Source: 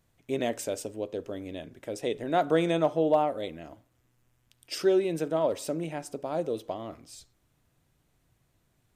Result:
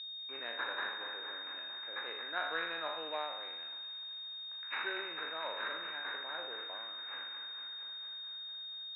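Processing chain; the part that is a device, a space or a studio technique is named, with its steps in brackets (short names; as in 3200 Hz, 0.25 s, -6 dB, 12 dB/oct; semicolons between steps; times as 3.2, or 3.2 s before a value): spectral trails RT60 0.88 s; de-esser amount 60%; passive tone stack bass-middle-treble 5-5-5; thin delay 0.229 s, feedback 74%, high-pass 3700 Hz, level -7 dB; toy sound module (decimation joined by straight lines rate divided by 6×; pulse-width modulation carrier 3700 Hz; speaker cabinet 670–3800 Hz, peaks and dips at 680 Hz -8 dB, 1600 Hz +10 dB, 2600 Hz +5 dB); gain +7 dB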